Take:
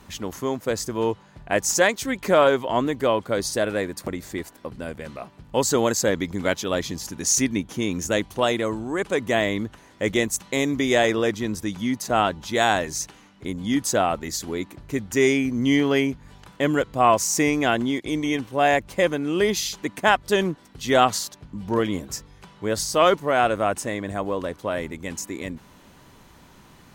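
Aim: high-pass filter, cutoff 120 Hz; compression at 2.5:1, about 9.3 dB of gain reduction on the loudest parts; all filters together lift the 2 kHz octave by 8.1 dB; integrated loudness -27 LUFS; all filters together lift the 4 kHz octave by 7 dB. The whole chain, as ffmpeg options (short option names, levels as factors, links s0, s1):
-af "highpass=120,equalizer=f=2000:t=o:g=8.5,equalizer=f=4000:t=o:g=6,acompressor=threshold=0.0631:ratio=2.5,volume=0.944"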